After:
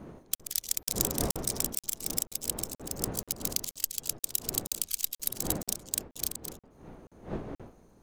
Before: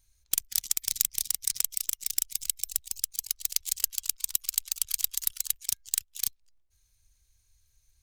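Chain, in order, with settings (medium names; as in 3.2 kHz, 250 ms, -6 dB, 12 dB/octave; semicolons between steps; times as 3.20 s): chunks repeated in reverse 212 ms, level -9 dB; wind noise 430 Hz -38 dBFS; crackling interface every 0.48 s, samples 2048, zero, from 0.35 s; trim -3.5 dB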